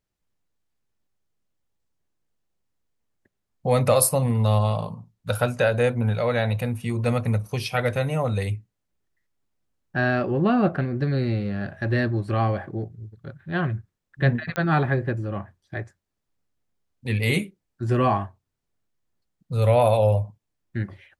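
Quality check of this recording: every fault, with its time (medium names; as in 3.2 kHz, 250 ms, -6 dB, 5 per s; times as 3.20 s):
14.56 s: pop -12 dBFS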